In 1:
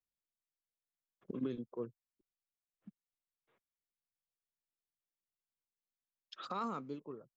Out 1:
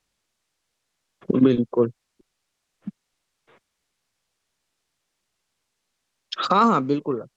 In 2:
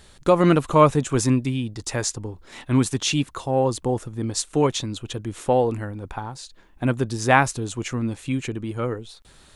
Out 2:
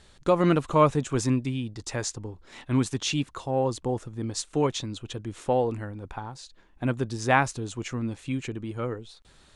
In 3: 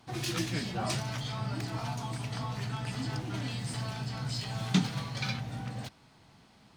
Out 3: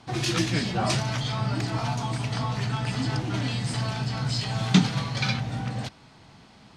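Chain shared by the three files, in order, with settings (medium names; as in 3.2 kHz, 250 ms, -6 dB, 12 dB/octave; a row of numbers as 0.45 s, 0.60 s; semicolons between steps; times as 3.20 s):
low-pass 8.3 kHz 12 dB/octave; peak normalisation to -6 dBFS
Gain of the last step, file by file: +21.5 dB, -5.0 dB, +7.5 dB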